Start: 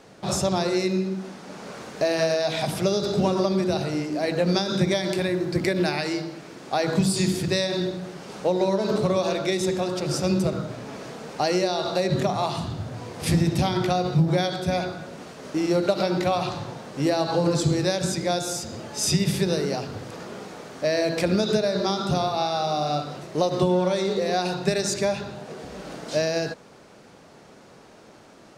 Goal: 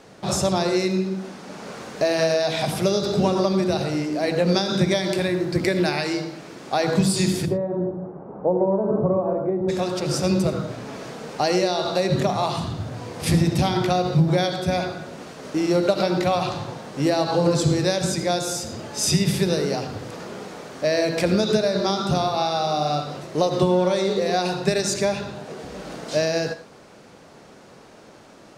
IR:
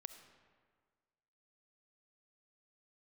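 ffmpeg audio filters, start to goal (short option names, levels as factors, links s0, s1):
-filter_complex "[0:a]asplit=3[s0][s1][s2];[s0]afade=t=out:st=7.45:d=0.02[s3];[s1]lowpass=f=1000:w=0.5412,lowpass=f=1000:w=1.3066,afade=t=in:st=7.45:d=0.02,afade=t=out:st=9.68:d=0.02[s4];[s2]afade=t=in:st=9.68:d=0.02[s5];[s3][s4][s5]amix=inputs=3:normalize=0[s6];[1:a]atrim=start_sample=2205,atrim=end_sample=4410,asetrate=36162,aresample=44100[s7];[s6][s7]afir=irnorm=-1:irlink=0,volume=2.24"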